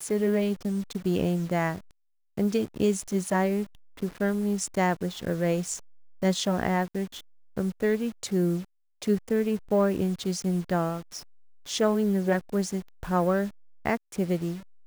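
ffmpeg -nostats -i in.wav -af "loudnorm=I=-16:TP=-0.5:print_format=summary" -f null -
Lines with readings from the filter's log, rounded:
Input Integrated:    -28.0 LUFS
Input True Peak:     -10.3 dBTP
Input LRA:             1.3 LU
Input Threshold:     -38.2 LUFS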